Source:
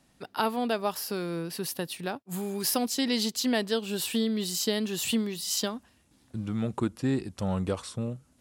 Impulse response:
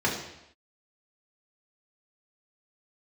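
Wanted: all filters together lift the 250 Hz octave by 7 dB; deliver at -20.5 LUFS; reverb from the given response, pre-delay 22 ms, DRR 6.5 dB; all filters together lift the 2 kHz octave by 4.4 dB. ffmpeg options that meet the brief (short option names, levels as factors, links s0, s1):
-filter_complex "[0:a]equalizer=f=250:t=o:g=8,equalizer=f=2000:t=o:g=5.5,asplit=2[s0][s1];[1:a]atrim=start_sample=2205,adelay=22[s2];[s1][s2]afir=irnorm=-1:irlink=0,volume=0.112[s3];[s0][s3]amix=inputs=2:normalize=0,volume=1.58"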